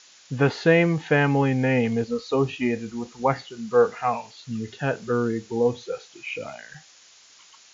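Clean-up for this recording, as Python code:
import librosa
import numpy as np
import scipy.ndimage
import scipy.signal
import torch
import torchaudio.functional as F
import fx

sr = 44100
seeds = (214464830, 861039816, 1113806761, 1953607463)

y = fx.fix_interpolate(x, sr, at_s=(6.74,), length_ms=2.7)
y = fx.noise_reduce(y, sr, print_start_s=6.86, print_end_s=7.36, reduce_db=16.0)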